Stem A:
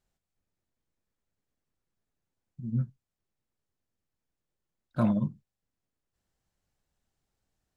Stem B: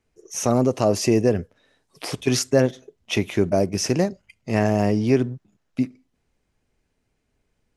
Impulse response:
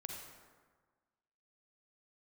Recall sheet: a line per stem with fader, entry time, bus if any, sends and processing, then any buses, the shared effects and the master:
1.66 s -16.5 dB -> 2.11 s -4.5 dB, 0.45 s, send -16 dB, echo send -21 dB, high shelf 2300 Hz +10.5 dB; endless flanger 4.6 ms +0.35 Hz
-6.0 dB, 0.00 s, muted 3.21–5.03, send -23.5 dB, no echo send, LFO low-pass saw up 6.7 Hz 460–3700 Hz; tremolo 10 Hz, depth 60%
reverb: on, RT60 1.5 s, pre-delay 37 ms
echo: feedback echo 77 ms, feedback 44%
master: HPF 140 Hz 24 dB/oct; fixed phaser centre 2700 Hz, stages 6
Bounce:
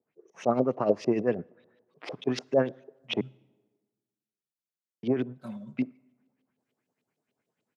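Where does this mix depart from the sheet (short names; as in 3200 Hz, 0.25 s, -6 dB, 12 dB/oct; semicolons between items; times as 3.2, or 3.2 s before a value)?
stem A -16.5 dB -> -25.5 dB; master: missing fixed phaser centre 2700 Hz, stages 6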